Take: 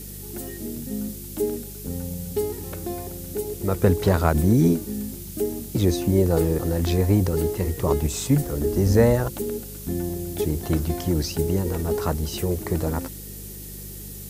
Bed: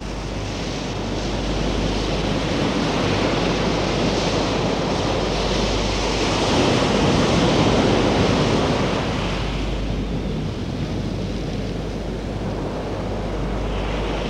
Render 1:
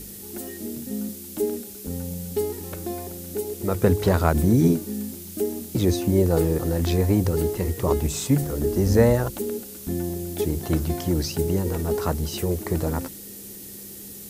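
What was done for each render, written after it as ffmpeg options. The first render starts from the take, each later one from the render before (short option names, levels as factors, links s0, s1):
-af "bandreject=f=50:t=h:w=4,bandreject=f=100:t=h:w=4,bandreject=f=150:t=h:w=4"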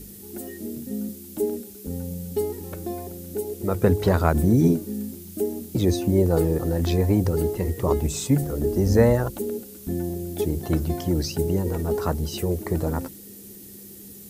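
-af "afftdn=nr=6:nf=-40"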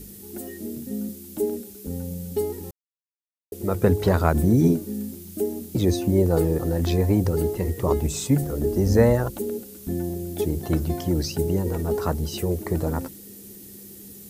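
-filter_complex "[0:a]asplit=3[s0][s1][s2];[s0]atrim=end=2.71,asetpts=PTS-STARTPTS,afade=t=out:st=2.706:d=0.004:c=hsin[s3];[s1]atrim=start=2.71:end=3.52,asetpts=PTS-STARTPTS,volume=0[s4];[s2]atrim=start=3.52,asetpts=PTS-STARTPTS,afade=t=in:d=0.004:c=hsin[s5];[s3][s4][s5]concat=n=3:v=0:a=1"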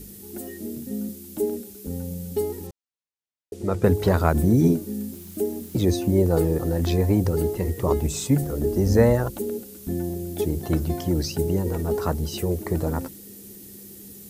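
-filter_complex "[0:a]asettb=1/sr,asplit=3[s0][s1][s2];[s0]atrim=end=2.674[s3];[s1]atrim=start=2.67:end=3.84,asetpts=PTS-STARTPTS,afade=t=in:d=0.004:c=qsin,afade=t=out:st=1.166:d=0.004:c=qsin,lowpass=7700[s4];[s2]atrim=start=3.836[s5];[s3][s4]acrossfade=d=0.004:c1=hsin:c2=qsin[s6];[s6][s5]acrossfade=d=0.004:c1=qsin:c2=hsin,asettb=1/sr,asplit=3[s7][s8][s9];[s7]atrim=end=5.134[s10];[s8]atrim=start=5.13:end=5.86,asetpts=PTS-STARTPTS,afade=t=in:d=0.004:c=qsin,afade=t=out:st=0.726:d=0.004:c=qsin,aeval=exprs='val(0)*gte(abs(val(0)),0.00473)':c=same[s11];[s9]atrim=start=5.856[s12];[s10][s11]acrossfade=d=0.004:c1=hsin:c2=qsin[s13];[s13][s12]acrossfade=d=0.004:c1=qsin:c2=hsin"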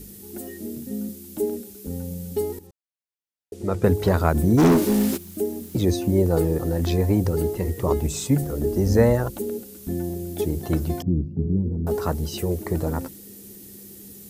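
-filter_complex "[0:a]asplit=3[s0][s1][s2];[s0]afade=t=out:st=4.57:d=0.02[s3];[s1]asplit=2[s4][s5];[s5]highpass=f=720:p=1,volume=31.6,asoftclip=type=tanh:threshold=0.376[s6];[s4][s6]amix=inputs=2:normalize=0,lowpass=f=3100:p=1,volume=0.501,afade=t=in:st=4.57:d=0.02,afade=t=out:st=5.16:d=0.02[s7];[s2]afade=t=in:st=5.16:d=0.02[s8];[s3][s7][s8]amix=inputs=3:normalize=0,asettb=1/sr,asplit=3[s9][s10][s11];[s9]atrim=end=11.024[s12];[s10]atrim=start=11.02:end=11.87,asetpts=PTS-STARTPTS,afade=t=in:d=0.004:c=qsin,afade=t=out:st=0.846:d=0.004:c=qsin,lowpass=f=220:t=q:w=1.5[s13];[s11]atrim=start=11.866[s14];[s12][s13]acrossfade=d=0.004:c1=hsin:c2=qsin[s15];[s15][s14]acrossfade=d=0.004:c1=qsin:c2=hsin,asplit=2[s16][s17];[s16]atrim=end=2.59,asetpts=PTS-STARTPTS,afade=t=out:st=2.586:d=0.004:c=hsin:silence=0.237137[s18];[s17]atrim=start=2.59,asetpts=PTS-STARTPTS,afade=t=in:d=1.12:silence=0.237137[s19];[s18][s19]concat=n=2:v=0:a=1"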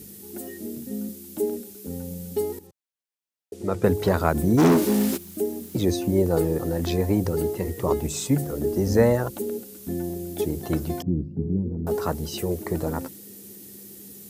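-af "highpass=80,lowshelf=f=160:g=-4"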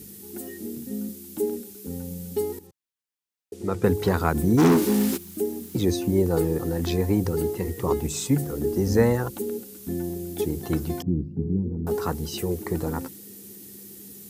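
-af "equalizer=f=610:t=o:w=0.24:g=-11"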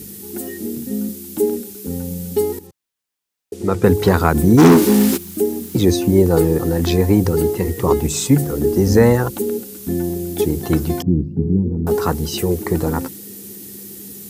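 -af "volume=2.66,alimiter=limit=0.891:level=0:latency=1"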